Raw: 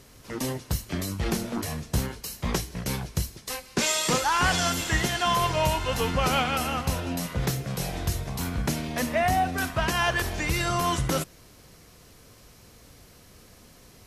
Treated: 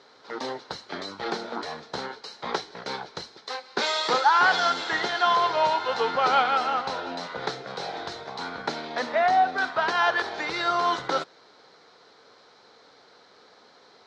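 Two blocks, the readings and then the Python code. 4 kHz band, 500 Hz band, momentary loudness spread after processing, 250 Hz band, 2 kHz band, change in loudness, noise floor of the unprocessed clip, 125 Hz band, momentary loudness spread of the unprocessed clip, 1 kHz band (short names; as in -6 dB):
0.0 dB, +1.5 dB, 15 LU, -8.0 dB, +2.0 dB, +1.0 dB, -53 dBFS, -19.0 dB, 9 LU, +4.5 dB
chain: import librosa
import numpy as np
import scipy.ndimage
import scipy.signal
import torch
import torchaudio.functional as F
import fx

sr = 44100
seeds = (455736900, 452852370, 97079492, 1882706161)

y = fx.cabinet(x, sr, low_hz=400.0, low_slope=12, high_hz=4700.0, hz=(440.0, 840.0, 1400.0, 2700.0, 4000.0), db=(5, 8, 7, -8, 7))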